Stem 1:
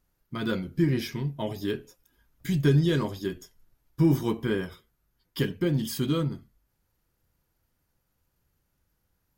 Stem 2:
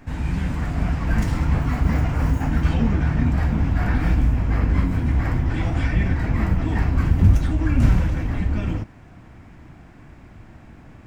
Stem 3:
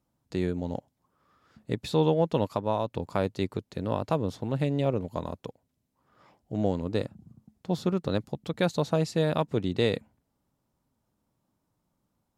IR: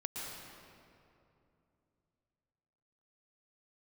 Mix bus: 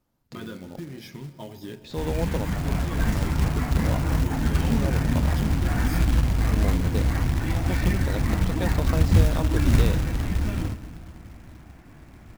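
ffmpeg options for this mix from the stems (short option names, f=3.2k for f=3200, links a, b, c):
-filter_complex "[0:a]bandreject=f=60:t=h:w=6,bandreject=f=120:t=h:w=6,bandreject=f=180:t=h:w=6,acompressor=threshold=-28dB:ratio=16,volume=-6.5dB,asplit=3[a][b][c];[b]volume=-13dB[d];[1:a]adelay=1900,volume=-4.5dB,asplit=2[e][f];[f]volume=-12dB[g];[2:a]lowpass=6.1k,acompressor=threshold=-33dB:ratio=2,volume=1dB,asplit=2[h][i];[i]volume=-17dB[j];[c]apad=whole_len=545944[k];[h][k]sidechaincompress=threshold=-53dB:ratio=4:attack=16:release=259[l];[3:a]atrim=start_sample=2205[m];[d][g][j]amix=inputs=3:normalize=0[n];[n][m]afir=irnorm=-1:irlink=0[o];[a][e][l][o]amix=inputs=4:normalize=0,acrusher=bits=4:mode=log:mix=0:aa=0.000001"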